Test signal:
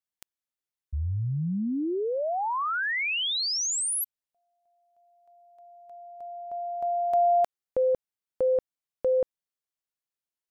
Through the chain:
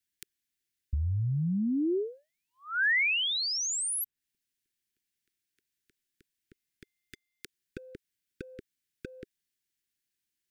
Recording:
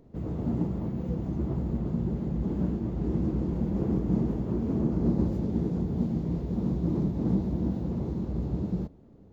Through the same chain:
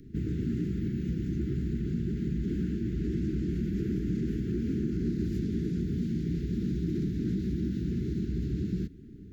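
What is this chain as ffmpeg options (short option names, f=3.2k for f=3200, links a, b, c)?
-filter_complex "[0:a]asplit=2[a][b];[b]alimiter=limit=-23.5dB:level=0:latency=1:release=29,volume=2dB[c];[a][c]amix=inputs=2:normalize=0,acrossover=split=600|1800[d][e][f];[d]acompressor=threshold=-29dB:ratio=4[g];[e]acompressor=threshold=-27dB:ratio=4[h];[f]acompressor=threshold=-33dB:ratio=4[i];[g][h][i]amix=inputs=3:normalize=0,asoftclip=type=hard:threshold=-18.5dB,asuperstop=centerf=780:order=12:qfactor=0.7"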